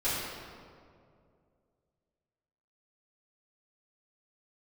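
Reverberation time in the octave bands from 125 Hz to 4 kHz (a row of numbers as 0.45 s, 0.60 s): 2.9 s, 2.6 s, 2.6 s, 2.0 s, 1.5 s, 1.2 s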